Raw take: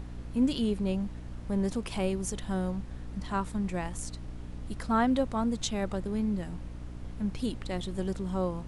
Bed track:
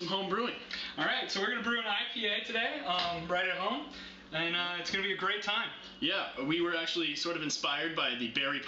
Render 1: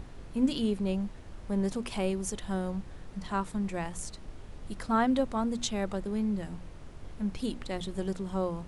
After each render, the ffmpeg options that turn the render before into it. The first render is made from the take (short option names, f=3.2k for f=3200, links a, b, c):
-af "bandreject=f=60:t=h:w=6,bandreject=f=120:t=h:w=6,bandreject=f=180:t=h:w=6,bandreject=f=240:t=h:w=6,bandreject=f=300:t=h:w=6"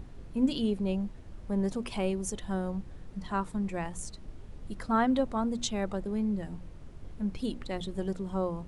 -af "afftdn=nr=6:nf=-47"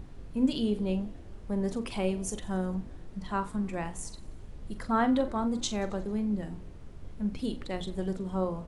-filter_complex "[0:a]asplit=2[a][b];[b]adelay=43,volume=-11dB[c];[a][c]amix=inputs=2:normalize=0,asplit=6[d][e][f][g][h][i];[e]adelay=89,afreqshift=50,volume=-23dB[j];[f]adelay=178,afreqshift=100,volume=-26.9dB[k];[g]adelay=267,afreqshift=150,volume=-30.8dB[l];[h]adelay=356,afreqshift=200,volume=-34.6dB[m];[i]adelay=445,afreqshift=250,volume=-38.5dB[n];[d][j][k][l][m][n]amix=inputs=6:normalize=0"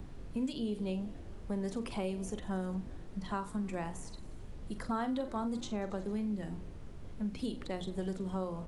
-filter_complex "[0:a]acrossover=split=110|720|1800[a][b][c][d];[a]alimiter=level_in=16dB:limit=-24dB:level=0:latency=1,volume=-16dB[e];[e][b][c][d]amix=inputs=4:normalize=0,acrossover=split=1700|3600[f][g][h];[f]acompressor=threshold=-33dB:ratio=4[i];[g]acompressor=threshold=-55dB:ratio=4[j];[h]acompressor=threshold=-52dB:ratio=4[k];[i][j][k]amix=inputs=3:normalize=0"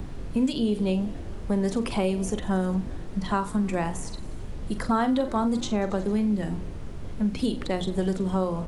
-af "volume=11dB"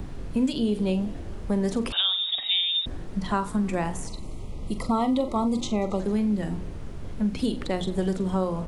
-filter_complex "[0:a]asettb=1/sr,asplit=3[a][b][c];[a]atrim=end=1.924[d];[b]atrim=start=1.92:end=2.86,asetpts=PTS-STARTPTS,afade=t=in:d=0.004:c=qsin,afade=t=out:st=0.936:d=0.004:c=qsin,lowpass=f=3.2k:t=q:w=0.5098,lowpass=f=3.2k:t=q:w=0.6013,lowpass=f=3.2k:t=q:w=0.9,lowpass=f=3.2k:t=q:w=2.563,afreqshift=-3800[e];[c]atrim=start=2.856[f];[d][e]acrossfade=d=0.004:c1=hsin:c2=qsin[g];[g][f]acrossfade=d=0.004:c1=qsin:c2=hsin,asettb=1/sr,asplit=3[h][i][j];[h]atrim=end=4.074[k];[i]atrim=start=4.07:end=6,asetpts=PTS-STARTPTS,afade=t=in:d=0.004:c=qsin,afade=t=out:st=1.926:d=0.004:c=qsin,asuperstop=centerf=1600:order=12:qfactor=2.6[l];[j]atrim=start=5.996[m];[k][l]acrossfade=d=0.004:c1=hsin:c2=qsin[n];[n][m]acrossfade=d=0.004:c1=qsin:c2=hsin"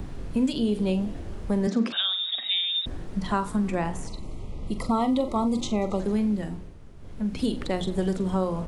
-filter_complex "[0:a]asettb=1/sr,asplit=3[a][b][c];[a]atrim=end=1.674[d];[b]atrim=start=1.67:end=2.84,asetpts=PTS-STARTPTS,afade=t=in:d=0.004:c=qsin,afade=t=out:st=1.166:d=0.004:c=qsin,highpass=f=190:w=0.5412,highpass=f=190:w=1.3066,equalizer=f=210:t=q:w=4:g=9,equalizer=f=440:t=q:w=4:g=-3,equalizer=f=900:t=q:w=4:g=-6,equalizer=f=1.6k:t=q:w=4:g=4,equalizer=f=3k:t=q:w=4:g=-5,lowpass=f=6.5k:w=0.5412,lowpass=f=6.5k:w=1.3066[e];[c]atrim=start=2.836[f];[d][e]acrossfade=d=0.004:c1=hsin:c2=qsin[g];[g][f]acrossfade=d=0.004:c1=qsin:c2=hsin,asettb=1/sr,asplit=3[h][i][j];[h]atrim=end=3.694[k];[i]atrim=start=3.69:end=4.79,asetpts=PTS-STARTPTS,afade=t=in:d=0.004:c=qsin,afade=t=out:st=1.096:d=0.004:c=qsin,highshelf=f=7.8k:g=-9[l];[j]atrim=start=4.786[m];[k][l]acrossfade=d=0.004:c1=hsin:c2=qsin[n];[n][m]acrossfade=d=0.004:c1=qsin:c2=hsin,asplit=3[o][p][q];[o]atrim=end=6.75,asetpts=PTS-STARTPTS,afade=t=out:st=6.26:d=0.49:silence=0.298538[r];[p]atrim=start=6.75:end=6.96,asetpts=PTS-STARTPTS,volume=-10.5dB[s];[q]atrim=start=6.96,asetpts=PTS-STARTPTS,afade=t=in:d=0.49:silence=0.298538[t];[r][s][t]concat=n=3:v=0:a=1"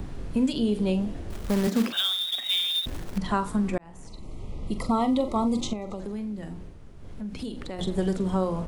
-filter_complex "[0:a]asettb=1/sr,asplit=3[a][b][c];[a]atrim=end=1.304[d];[b]atrim=start=1.3:end=3.18,asetpts=PTS-STARTPTS,afade=t=in:d=0.004:c=qsin,afade=t=out:st=1.876:d=0.004:c=qsin,acrusher=bits=3:mode=log:mix=0:aa=0.000001[e];[c]atrim=start=3.176[f];[d][e]acrossfade=d=0.004:c1=hsin:c2=qsin[g];[g][f]acrossfade=d=0.004:c1=qsin:c2=hsin,asettb=1/sr,asplit=3[h][i][j];[h]atrim=end=5.734[k];[i]atrim=start=5.73:end=7.79,asetpts=PTS-STARTPTS,afade=t=in:d=0.004:c=qsin,afade=t=out:st=2.056:d=0.004:c=qsin,acompressor=threshold=-34dB:ratio=2.5:attack=3.2:release=140:knee=1:detection=peak[l];[j]atrim=start=7.786[m];[k][l]acrossfade=d=0.004:c1=hsin:c2=qsin[n];[n][m]acrossfade=d=0.004:c1=qsin:c2=hsin,asplit=2[o][p];[o]atrim=end=3.78,asetpts=PTS-STARTPTS,afade=t=out:st=3.776:d=0.004:c=hsin[q];[p]atrim=start=3.78,asetpts=PTS-STARTPTS,afade=t=in:d=0.73[r];[q][r]concat=n=2:v=0:a=1"